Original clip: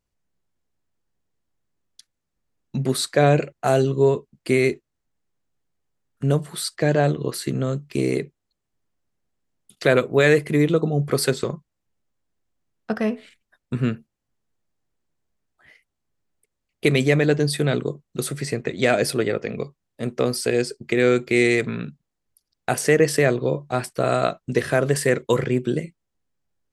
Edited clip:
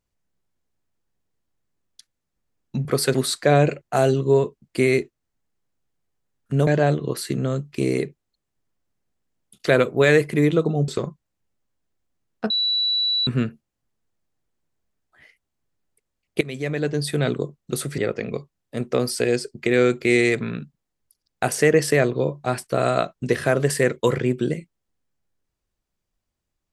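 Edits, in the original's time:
6.38–6.84 s: delete
11.05–11.34 s: move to 2.85 s
12.96–13.73 s: bleep 3.94 kHz -18.5 dBFS
16.87–17.77 s: fade in, from -18.5 dB
18.44–19.24 s: delete

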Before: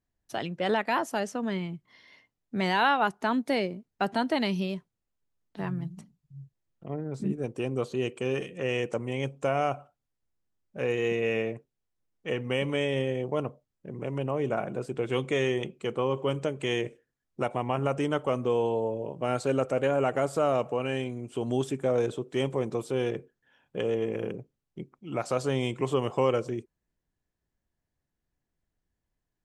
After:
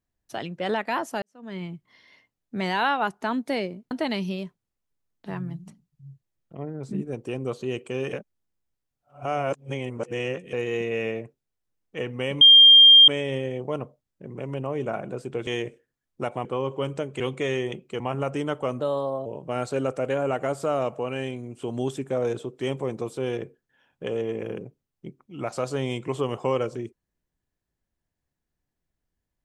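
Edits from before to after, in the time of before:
1.22–1.63 s: fade in quadratic
3.91–4.22 s: delete
8.44–10.84 s: reverse
12.72 s: add tone 3.2 kHz -8 dBFS 0.67 s
15.11–15.91 s: swap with 16.66–17.64 s
18.44–18.99 s: speed 120%

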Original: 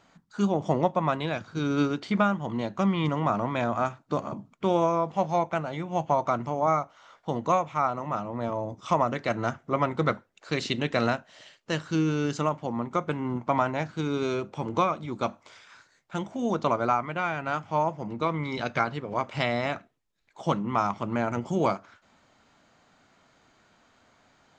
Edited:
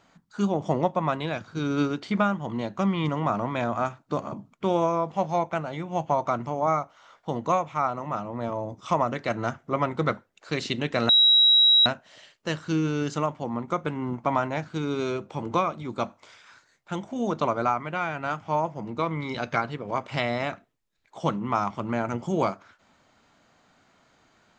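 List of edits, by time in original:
11.09 s: add tone 3.86 kHz -14 dBFS 0.77 s

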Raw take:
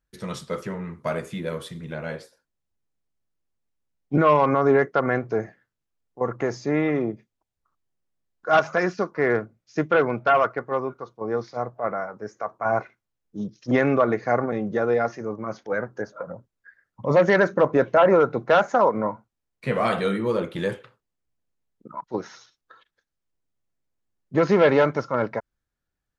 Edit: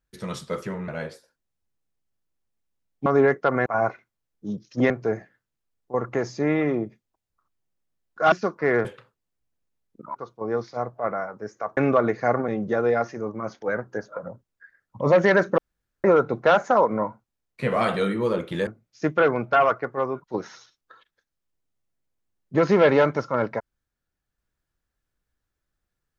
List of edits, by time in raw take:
0.88–1.97 s: delete
4.15–4.57 s: delete
8.59–8.88 s: delete
9.41–10.96 s: swap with 20.71–22.02 s
12.57–13.81 s: move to 5.17 s
17.62–18.08 s: room tone

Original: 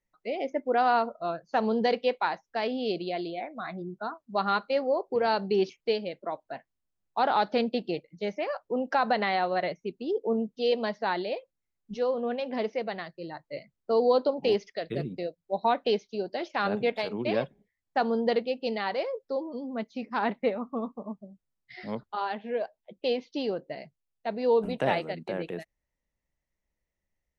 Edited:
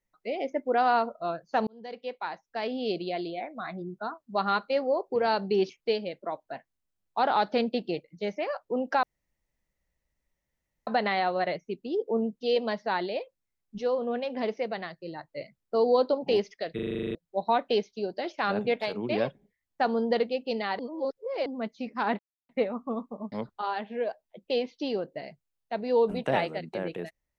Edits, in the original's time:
1.67–2.92 s: fade in
9.03 s: insert room tone 1.84 s
14.91 s: stutter in place 0.04 s, 10 plays
18.95–19.62 s: reverse
20.35 s: insert silence 0.30 s
21.18–21.86 s: delete

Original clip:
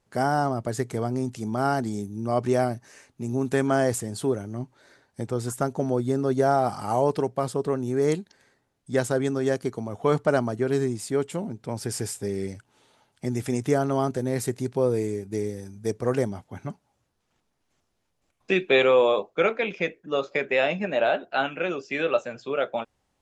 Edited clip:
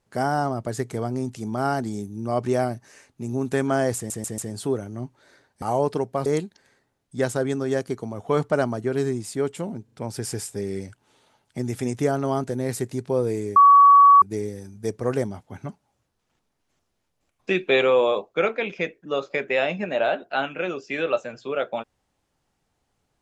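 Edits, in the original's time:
3.96 s: stutter 0.14 s, 4 plays
5.20–6.85 s: delete
7.49–8.01 s: delete
11.59 s: stutter 0.04 s, 3 plays
15.23 s: add tone 1.13 kHz -8.5 dBFS 0.66 s

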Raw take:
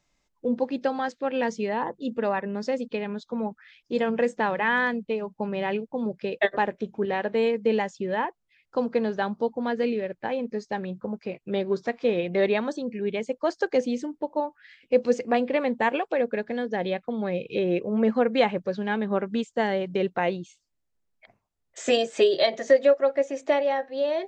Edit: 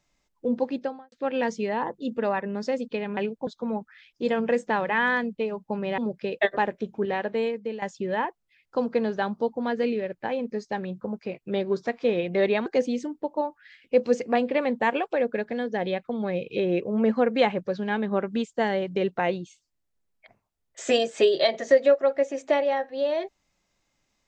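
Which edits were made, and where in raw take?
0.68–1.12 s: studio fade out
5.68–5.98 s: move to 3.17 s
6.92–7.82 s: fade out equal-power, to -15 dB
12.66–13.65 s: delete

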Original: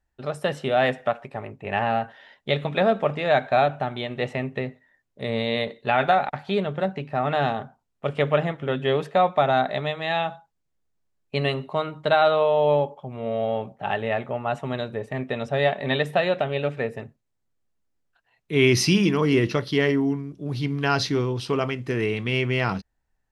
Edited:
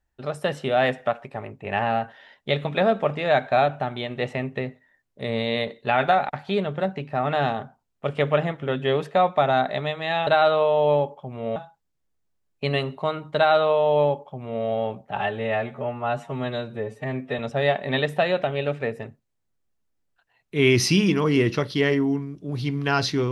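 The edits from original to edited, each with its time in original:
12.07–13.36 s: copy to 10.27 s
13.88–15.36 s: stretch 1.5×

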